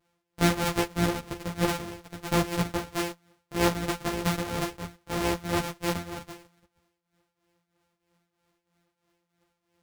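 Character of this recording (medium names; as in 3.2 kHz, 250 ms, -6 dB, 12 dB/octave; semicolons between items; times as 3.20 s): a buzz of ramps at a fixed pitch in blocks of 256 samples; tremolo triangle 3.1 Hz, depth 80%; a shimmering, thickened sound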